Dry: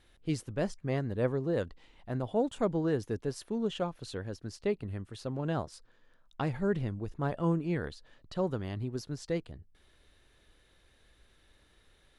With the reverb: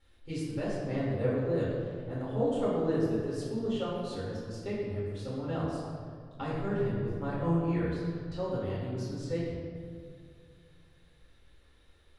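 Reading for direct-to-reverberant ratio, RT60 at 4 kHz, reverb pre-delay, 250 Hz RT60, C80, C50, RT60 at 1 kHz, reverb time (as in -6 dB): -8.5 dB, 1.2 s, 4 ms, 2.5 s, 1.0 dB, -1.0 dB, 1.9 s, 2.1 s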